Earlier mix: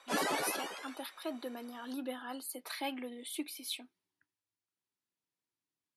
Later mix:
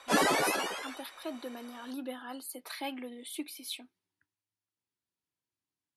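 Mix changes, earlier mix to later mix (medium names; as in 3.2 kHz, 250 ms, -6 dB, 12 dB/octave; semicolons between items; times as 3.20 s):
background +7.0 dB; master: add peaking EQ 68 Hz +10 dB 1.3 oct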